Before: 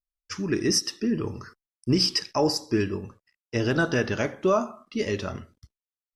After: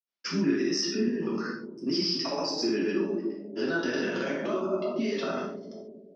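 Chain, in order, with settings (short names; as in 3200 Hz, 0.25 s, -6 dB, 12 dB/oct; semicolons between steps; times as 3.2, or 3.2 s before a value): elliptic band-pass 200–5400 Hz, stop band 40 dB; bell 390 Hz +3.5 dB 0.23 oct; notch 870 Hz, Q 14; analogue delay 0.212 s, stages 1024, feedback 54%, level -14 dB; compressor, threshold -26 dBFS, peak gain reduction 9 dB; grains, pitch spread up and down by 0 st; limiter -29 dBFS, peak gain reduction 12 dB; reverb, pre-delay 3 ms, DRR -3.5 dB; gain +4 dB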